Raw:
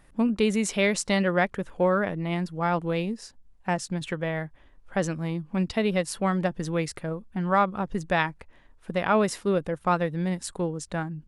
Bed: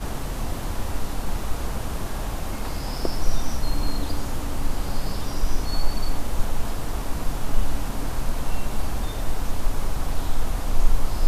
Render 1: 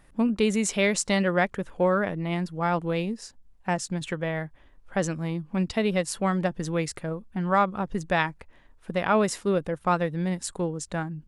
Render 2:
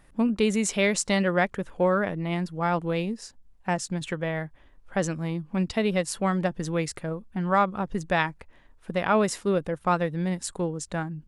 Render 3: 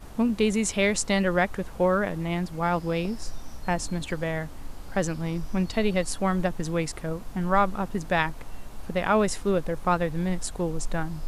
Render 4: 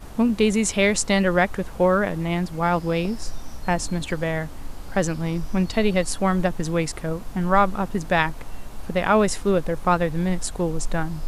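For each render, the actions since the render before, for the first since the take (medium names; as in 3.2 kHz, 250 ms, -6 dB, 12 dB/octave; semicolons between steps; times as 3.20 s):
dynamic bell 7.2 kHz, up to +4 dB, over -51 dBFS, Q 2.3
no audible change
add bed -14.5 dB
trim +4 dB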